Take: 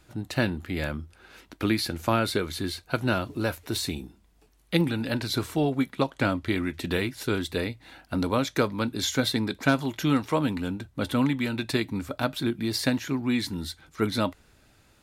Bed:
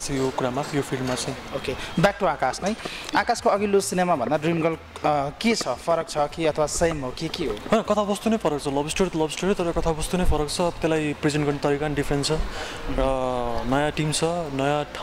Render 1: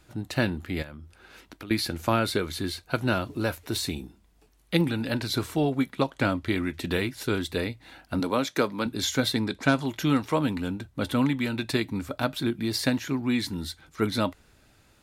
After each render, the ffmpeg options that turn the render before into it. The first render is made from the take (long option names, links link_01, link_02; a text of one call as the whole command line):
ffmpeg -i in.wav -filter_complex "[0:a]asettb=1/sr,asplit=3[link_01][link_02][link_03];[link_01]atrim=end=0.824[link_04];[link_02]atrim=start=0.82:end=1.71,asetpts=PTS-STARTPTS,afade=type=in:duration=0.004:curve=qsin,afade=type=out:start_time=0.886:duration=0.004:curve=qsin,acompressor=threshold=-38dB:ratio=6:attack=3.2:release=140:knee=1:detection=peak[link_05];[link_03]atrim=start=1.706[link_06];[link_04][link_05]acrossfade=duration=0.004:curve1=hsin:curve2=qsin[link_07];[link_07][link_06]acrossfade=duration=0.004:curve1=qsin:curve2=hsin,asettb=1/sr,asplit=3[link_08][link_09][link_10];[link_08]atrim=end=8.204[link_11];[link_09]atrim=start=8.2:end=8.86,asetpts=PTS-STARTPTS,afade=type=in:duration=0.004:curve=qsin,afade=type=out:start_time=0.656:duration=0.004:curve=qsin,highpass=180[link_12];[link_10]atrim=start=8.856[link_13];[link_11][link_12]acrossfade=duration=0.004:curve1=hsin:curve2=qsin[link_14];[link_14][link_13]acrossfade=duration=0.004:curve1=qsin:curve2=hsin,asettb=1/sr,asplit=3[link_15][link_16][link_17];[link_15]atrim=end=9.444[link_18];[link_16]atrim=start=9.44:end=9.86,asetpts=PTS-STARTPTS,afade=type=in:duration=0.004:curve=qsin,afade=type=out:start_time=0.416:duration=0.004:curve=qsin,lowpass=frequency=11000:width=0.5412,lowpass=frequency=11000:width=1.3066[link_19];[link_17]atrim=start=9.856[link_20];[link_18][link_19]acrossfade=duration=0.004:curve1=hsin:curve2=qsin[link_21];[link_21][link_20]acrossfade=duration=0.004:curve1=qsin:curve2=hsin" out.wav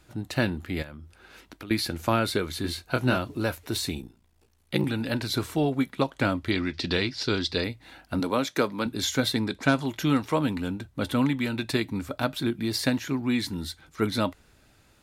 ffmpeg -i in.wav -filter_complex "[0:a]asettb=1/sr,asplit=3[link_01][link_02][link_03];[link_01]atrim=end=2.624[link_04];[link_02]atrim=start=2.62:end=3.17,asetpts=PTS-STARTPTS,afade=type=in:duration=0.004:curve=qsin,afade=type=out:start_time=0.546:duration=0.004:curve=qsin,asplit=2[link_05][link_06];[link_06]adelay=24,volume=-5dB[link_07];[link_05][link_07]amix=inputs=2:normalize=0,atrim=end_sample=24255[link_08];[link_03]atrim=start=3.166[link_09];[link_04][link_08]acrossfade=duration=0.004:curve1=hsin:curve2=qsin[link_10];[link_10][link_09]acrossfade=duration=0.004:curve1=qsin:curve2=hsin,asettb=1/sr,asplit=3[link_11][link_12][link_13];[link_11]atrim=end=4.014[link_14];[link_12]atrim=start=4.01:end=4.84,asetpts=PTS-STARTPTS,afade=type=in:duration=0.004:curve=qsin,afade=type=out:start_time=0.826:duration=0.004:curve=qsin,aeval=exprs='val(0)*sin(2*PI*29*n/s)':channel_layout=same[link_15];[link_13]atrim=start=4.836[link_16];[link_14][link_15]acrossfade=duration=0.004:curve1=hsin:curve2=qsin[link_17];[link_17][link_16]acrossfade=duration=0.004:curve1=qsin:curve2=hsin,asettb=1/sr,asplit=3[link_18][link_19][link_20];[link_18]atrim=end=6.514[link_21];[link_19]atrim=start=6.51:end=7.64,asetpts=PTS-STARTPTS,afade=type=in:duration=0.004:curve=qsin,afade=type=out:start_time=1.126:duration=0.004:curve=qsin,lowpass=frequency=4900:width_type=q:width=4.9[link_22];[link_20]atrim=start=7.636[link_23];[link_21][link_22]acrossfade=duration=0.004:curve1=hsin:curve2=qsin[link_24];[link_24][link_23]acrossfade=duration=0.004:curve1=qsin:curve2=hsin" out.wav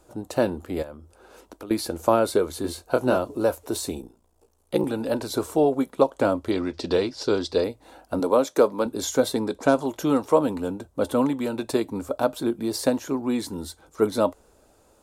ffmpeg -i in.wav -af "equalizer=frequency=125:width_type=o:width=1:gain=-8,equalizer=frequency=500:width_type=o:width=1:gain=10,equalizer=frequency=1000:width_type=o:width=1:gain=5,equalizer=frequency=2000:width_type=o:width=1:gain=-10,equalizer=frequency=4000:width_type=o:width=1:gain=-5,equalizer=frequency=8000:width_type=o:width=1:gain=5" out.wav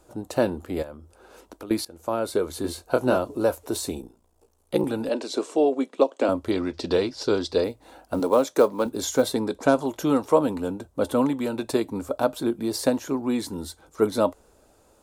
ffmpeg -i in.wav -filter_complex "[0:a]asettb=1/sr,asplit=3[link_01][link_02][link_03];[link_01]atrim=end=5.094[link_04];[link_02]atrim=start=5.09:end=6.29,asetpts=PTS-STARTPTS,afade=type=in:duration=0.004:curve=qsin,afade=type=out:start_time=1.196:duration=0.004:curve=qsin,highpass=frequency=240:width=0.5412,highpass=frequency=240:width=1.3066,equalizer=frequency=900:width_type=q:width=4:gain=-5,equalizer=frequency=1400:width_type=q:width=4:gain=-5,equalizer=frequency=2700:width_type=q:width=4:gain=4,lowpass=frequency=8100:width=0.5412,lowpass=frequency=8100:width=1.3066[link_05];[link_03]atrim=start=6.286[link_06];[link_04][link_05]acrossfade=duration=0.004:curve1=hsin:curve2=qsin[link_07];[link_07][link_06]acrossfade=duration=0.004:curve1=qsin:curve2=hsin,asettb=1/sr,asplit=3[link_08][link_09][link_10];[link_08]atrim=end=7.674[link_11];[link_09]atrim=start=7.67:end=9.34,asetpts=PTS-STARTPTS,afade=type=in:duration=0.004:curve=qsin,afade=type=out:start_time=1.666:duration=0.004:curve=qsin,acrusher=bits=8:mode=log:mix=0:aa=0.000001[link_12];[link_10]atrim=start=9.336[link_13];[link_11][link_12]acrossfade=duration=0.004:curve1=hsin:curve2=qsin[link_14];[link_14][link_13]acrossfade=duration=0.004:curve1=qsin:curve2=hsin,asplit=2[link_15][link_16];[link_15]atrim=end=1.85,asetpts=PTS-STARTPTS,afade=type=out:start_time=1.846:duration=0.004:curve=hsin:silence=0.0841395[link_17];[link_16]atrim=start=1.85,asetpts=PTS-STARTPTS,afade=type=in:duration=0.74:silence=0.0841395[link_18];[link_17][link_18]concat=n=2:v=0:a=1" out.wav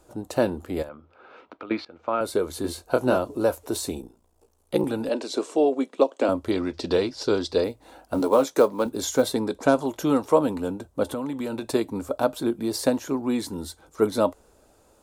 ffmpeg -i in.wav -filter_complex "[0:a]asettb=1/sr,asplit=3[link_01][link_02][link_03];[link_01]atrim=end=0.894[link_04];[link_02]atrim=start=0.89:end=2.21,asetpts=PTS-STARTPTS,afade=type=in:duration=0.004:curve=qsin,afade=type=out:start_time=1.316:duration=0.004:curve=qsin,highpass=frequency=100:width=0.5412,highpass=frequency=100:width=1.3066,equalizer=frequency=110:width_type=q:width=4:gain=-8,equalizer=frequency=190:width_type=q:width=4:gain=-5,equalizer=frequency=360:width_type=q:width=4:gain=-4,equalizer=frequency=1300:width_type=q:width=4:gain=8,equalizer=frequency=2300:width_type=q:width=4:gain=7,lowpass=frequency=3700:width=0.5412,lowpass=frequency=3700:width=1.3066[link_05];[link_03]atrim=start=2.206[link_06];[link_04][link_05]acrossfade=duration=0.004:curve1=hsin:curve2=qsin[link_07];[link_07][link_06]acrossfade=duration=0.004:curve1=qsin:curve2=hsin,asettb=1/sr,asplit=3[link_08][link_09][link_10];[link_08]atrim=end=8.144[link_11];[link_09]atrim=start=8.14:end=8.6,asetpts=PTS-STARTPTS,afade=type=in:duration=0.004:curve=qsin,afade=type=out:start_time=0.456:duration=0.004:curve=qsin,asplit=2[link_12][link_13];[link_13]adelay=14,volume=-7dB[link_14];[link_12][link_14]amix=inputs=2:normalize=0,atrim=end_sample=20286[link_15];[link_10]atrim=start=8.596[link_16];[link_11][link_15]acrossfade=duration=0.004:curve1=hsin:curve2=qsin[link_17];[link_17][link_16]acrossfade=duration=0.004:curve1=qsin:curve2=hsin,asettb=1/sr,asplit=3[link_18][link_19][link_20];[link_18]atrim=end=11.034[link_21];[link_19]atrim=start=11.03:end=11.74,asetpts=PTS-STARTPTS,afade=type=in:duration=0.004:curve=qsin,afade=type=out:start_time=0.706:duration=0.004:curve=qsin,acompressor=threshold=-25dB:ratio=10:attack=3.2:release=140:knee=1:detection=peak[link_22];[link_20]atrim=start=11.736[link_23];[link_21][link_22]acrossfade=duration=0.004:curve1=hsin:curve2=qsin[link_24];[link_24][link_23]acrossfade=duration=0.004:curve1=qsin:curve2=hsin" out.wav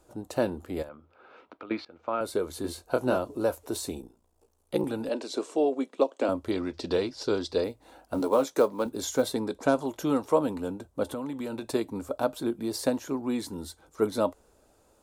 ffmpeg -i in.wav -af "volume=-4.5dB" out.wav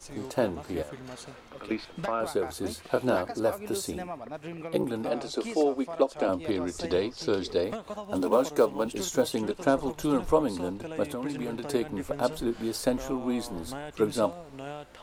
ffmpeg -i in.wav -i bed.wav -filter_complex "[1:a]volume=-16.5dB[link_01];[0:a][link_01]amix=inputs=2:normalize=0" out.wav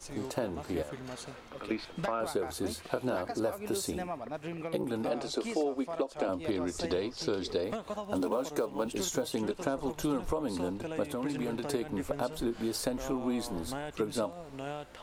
ffmpeg -i in.wav -af "alimiter=limit=-15.5dB:level=0:latency=1:release=197,acompressor=threshold=-28dB:ratio=4" out.wav